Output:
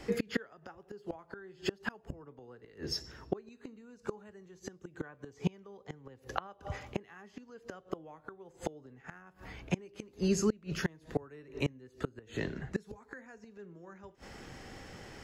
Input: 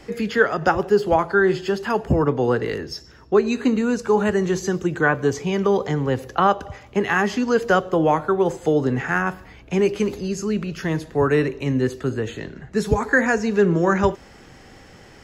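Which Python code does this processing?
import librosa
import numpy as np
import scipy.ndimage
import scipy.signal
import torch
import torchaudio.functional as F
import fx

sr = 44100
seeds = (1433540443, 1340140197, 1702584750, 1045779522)

y = fx.gate_flip(x, sr, shuts_db=-15.0, range_db=-30)
y = y * librosa.db_to_amplitude(-3.0)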